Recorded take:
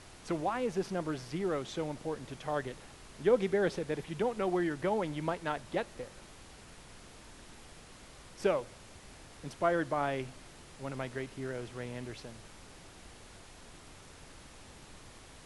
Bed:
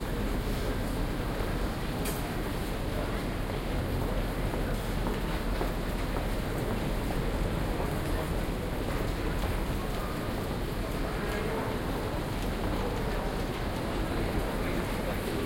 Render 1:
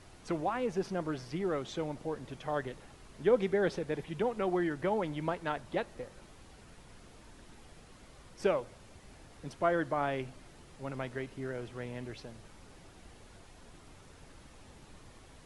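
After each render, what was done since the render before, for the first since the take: denoiser 6 dB, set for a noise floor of -54 dBFS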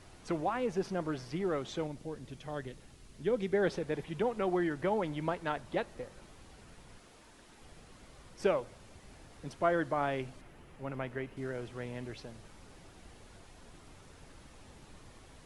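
1.87–3.53 bell 940 Hz -8.5 dB 2.5 oct; 6.98–7.61 low shelf 210 Hz -9.5 dB; 10.41–11.37 band shelf 6000 Hz -8.5 dB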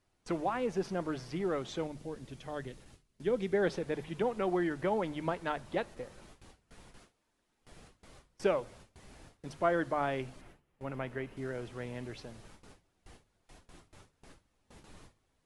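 gate with hold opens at -43 dBFS; notches 50/100/150 Hz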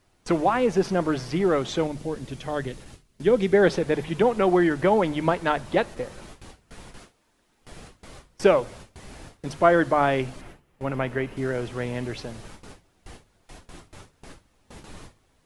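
gain +11.5 dB

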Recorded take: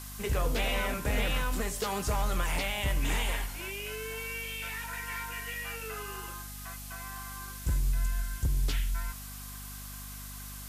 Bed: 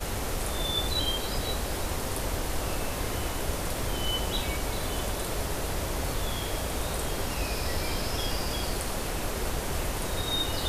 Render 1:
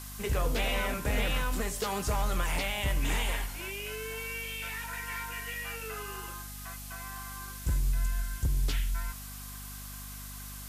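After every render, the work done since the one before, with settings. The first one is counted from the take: nothing audible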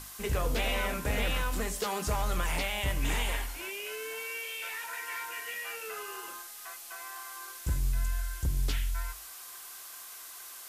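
notches 50/100/150/200/250 Hz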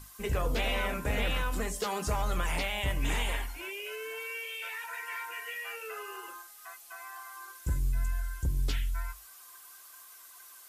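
denoiser 9 dB, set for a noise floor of -46 dBFS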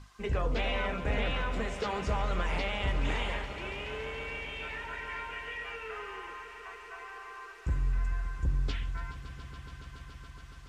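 air absorption 140 m; swelling echo 0.141 s, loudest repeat 5, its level -16 dB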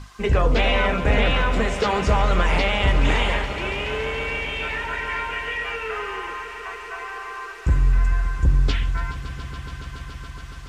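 gain +12 dB

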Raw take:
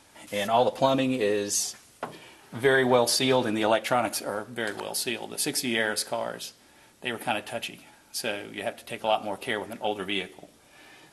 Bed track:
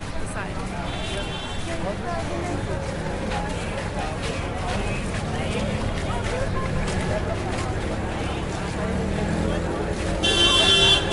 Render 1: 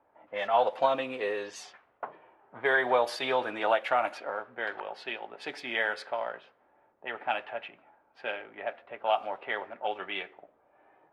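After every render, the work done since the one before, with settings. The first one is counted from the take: low-pass opened by the level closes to 680 Hz, open at -21 dBFS; three-band isolator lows -19 dB, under 490 Hz, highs -22 dB, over 3000 Hz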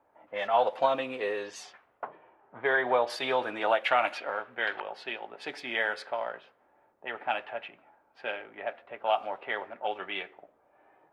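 2.07–3.1 air absorption 140 m; 3.85–4.82 bell 2900 Hz +8.5 dB 1.5 oct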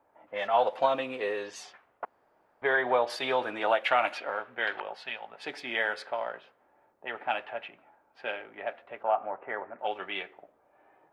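2.05–2.62 room tone; 4.95–5.44 bell 350 Hz -14.5 dB 0.6 oct; 9.03–9.79 LPF 1800 Hz 24 dB/oct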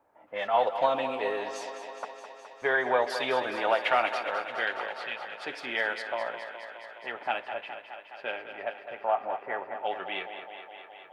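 thinning echo 0.209 s, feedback 77%, high-pass 200 Hz, level -10 dB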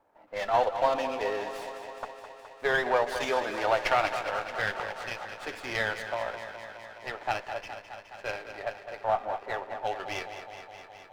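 running maximum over 5 samples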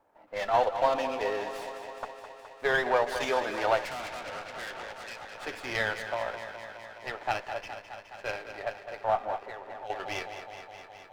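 3.85–5.35 tube stage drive 35 dB, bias 0.7; 9.43–9.9 compressor, threshold -37 dBFS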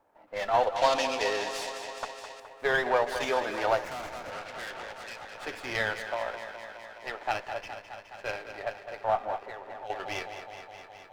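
0.76–2.4 bell 5800 Hz +13 dB 2.3 oct; 3.69–4.32 median filter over 15 samples; 6–7.33 bell 120 Hz -7 dB 1.1 oct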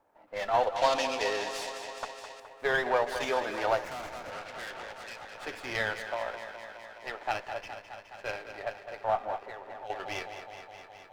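gain -1.5 dB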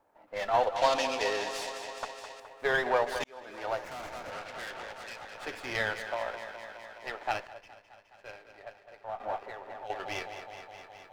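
3.24–4.17 fade in; 7.47–9.2 gain -10.5 dB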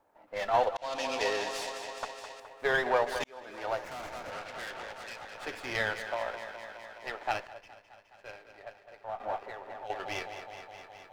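0.77–1.17 fade in

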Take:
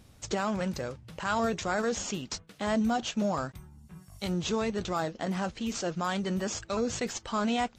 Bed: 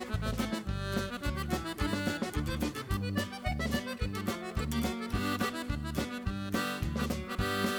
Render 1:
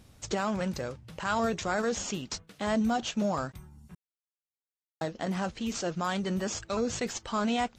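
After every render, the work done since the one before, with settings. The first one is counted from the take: 3.95–5.01 mute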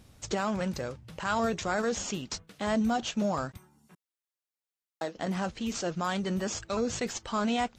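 3.57–5.16 HPF 280 Hz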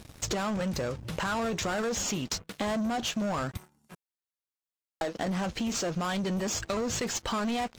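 sample leveller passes 3; compressor, threshold -29 dBFS, peak gain reduction 8.5 dB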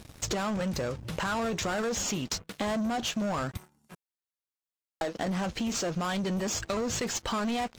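nothing audible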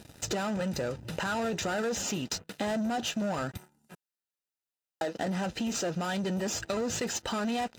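notch comb 1100 Hz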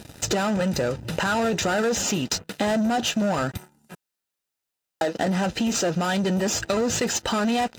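gain +8 dB

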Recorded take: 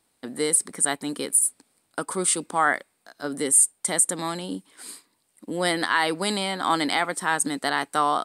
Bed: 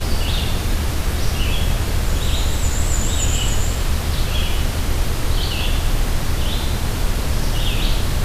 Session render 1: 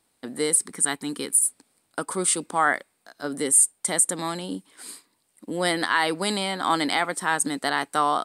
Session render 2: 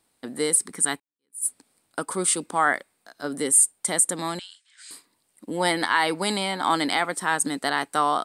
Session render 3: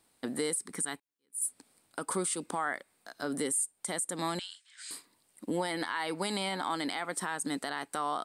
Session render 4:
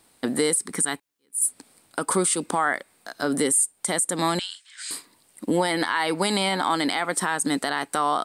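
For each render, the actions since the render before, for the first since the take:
0.6–1.44 bell 610 Hz -11.5 dB 0.38 oct
1–1.46 fade in exponential; 4.39–4.91 elliptic band-pass 1600–7700 Hz, stop band 60 dB; 5.53–6.7 small resonant body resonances 890/2200 Hz, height 13 dB, ringing for 95 ms
compressor 6:1, threshold -28 dBFS, peak gain reduction 14 dB; limiter -21.5 dBFS, peak gain reduction 6.5 dB
gain +10 dB

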